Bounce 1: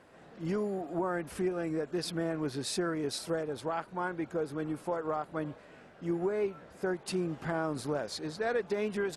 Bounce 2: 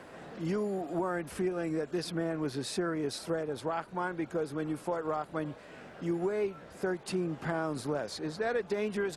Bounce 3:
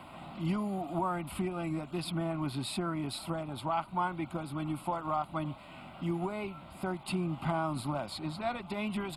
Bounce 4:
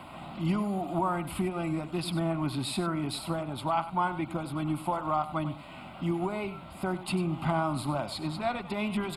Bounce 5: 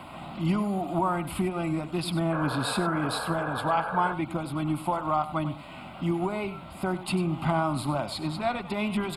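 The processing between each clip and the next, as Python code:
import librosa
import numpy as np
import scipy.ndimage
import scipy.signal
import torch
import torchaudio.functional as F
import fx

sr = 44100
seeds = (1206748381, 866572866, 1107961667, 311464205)

y1 = fx.band_squash(x, sr, depth_pct=40)
y2 = fx.fixed_phaser(y1, sr, hz=1700.0, stages=6)
y2 = y2 * librosa.db_to_amplitude(5.0)
y3 = y2 + 10.0 ** (-13.5 / 20.0) * np.pad(y2, (int(97 * sr / 1000.0), 0))[:len(y2)]
y3 = y3 * librosa.db_to_amplitude(3.5)
y4 = fx.spec_paint(y3, sr, seeds[0], shape='noise', start_s=2.32, length_s=1.82, low_hz=420.0, high_hz=1700.0, level_db=-36.0)
y4 = y4 * librosa.db_to_amplitude(2.5)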